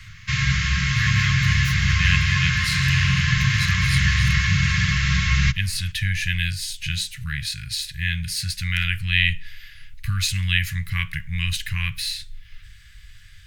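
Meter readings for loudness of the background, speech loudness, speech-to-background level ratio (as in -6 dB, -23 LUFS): -20.5 LUFS, -25.0 LUFS, -4.5 dB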